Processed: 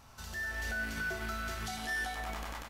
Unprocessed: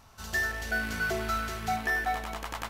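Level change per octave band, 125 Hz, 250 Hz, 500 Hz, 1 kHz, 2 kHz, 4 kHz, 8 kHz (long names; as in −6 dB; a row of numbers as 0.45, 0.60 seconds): −4.5, −6.0, −8.5, −9.5, −5.5, −3.5, −3.5 decibels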